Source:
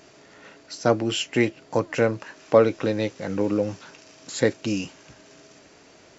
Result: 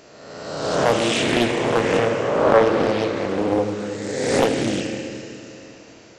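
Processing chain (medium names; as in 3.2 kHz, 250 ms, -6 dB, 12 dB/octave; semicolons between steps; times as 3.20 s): reverse spectral sustain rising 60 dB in 1.48 s; Schroeder reverb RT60 3 s, combs from 26 ms, DRR 2.5 dB; loudspeaker Doppler distortion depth 0.6 ms; trim -1 dB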